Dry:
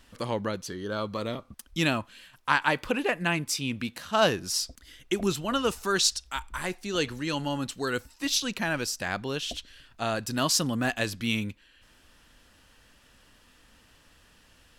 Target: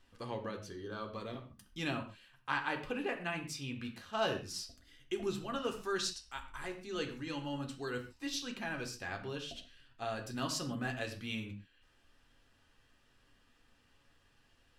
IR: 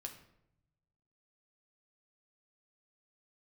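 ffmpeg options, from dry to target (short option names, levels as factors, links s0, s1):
-filter_complex "[0:a]highshelf=f=7000:g=-8.5[s0];[1:a]atrim=start_sample=2205,afade=t=out:st=0.2:d=0.01,atrim=end_sample=9261[s1];[s0][s1]afir=irnorm=-1:irlink=0,volume=0.473"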